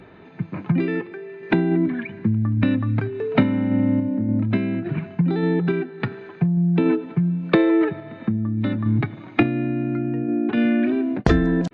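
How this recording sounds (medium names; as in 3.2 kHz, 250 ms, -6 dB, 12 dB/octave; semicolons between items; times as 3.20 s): random-step tremolo 3.5 Hz; MP3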